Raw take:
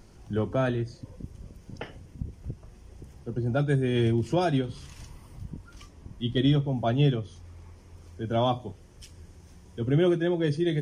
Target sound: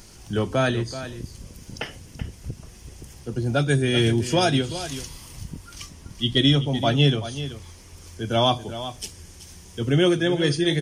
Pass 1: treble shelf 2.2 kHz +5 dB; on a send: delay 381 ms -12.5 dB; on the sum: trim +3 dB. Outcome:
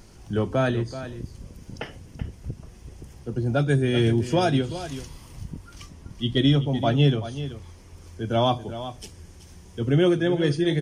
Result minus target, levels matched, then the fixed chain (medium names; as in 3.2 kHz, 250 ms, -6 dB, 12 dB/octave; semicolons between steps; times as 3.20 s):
4 kHz band -5.5 dB
treble shelf 2.2 kHz +15 dB; on a send: delay 381 ms -12.5 dB; on the sum: trim +3 dB